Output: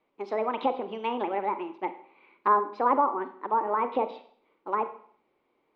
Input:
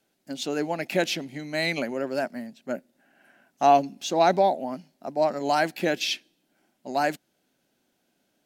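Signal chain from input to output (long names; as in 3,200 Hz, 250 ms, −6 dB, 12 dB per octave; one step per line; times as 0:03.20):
treble cut that deepens with the level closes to 660 Hz, closed at −21.5 dBFS
low-pass filter 1,900 Hz 24 dB per octave
change of speed 1.47×
four-comb reverb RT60 0.56 s, combs from 33 ms, DRR 10 dB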